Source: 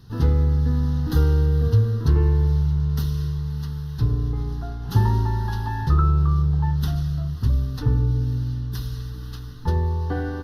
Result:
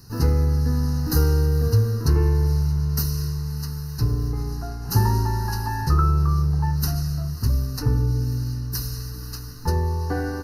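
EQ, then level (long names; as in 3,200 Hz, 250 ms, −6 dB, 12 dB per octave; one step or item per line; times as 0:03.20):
Butterworth band-reject 3,400 Hz, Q 2.2
bass and treble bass −3 dB, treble +13 dB
+2.0 dB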